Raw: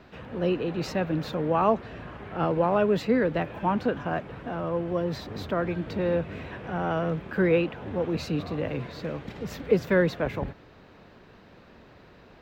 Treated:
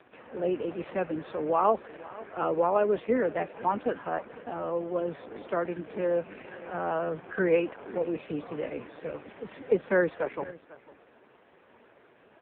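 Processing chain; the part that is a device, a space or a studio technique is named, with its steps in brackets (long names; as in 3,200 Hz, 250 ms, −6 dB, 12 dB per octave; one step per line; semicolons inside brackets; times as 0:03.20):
satellite phone (band-pass filter 310–3,300 Hz; single-tap delay 496 ms −18.5 dB; AMR narrowband 4.75 kbit/s 8,000 Hz)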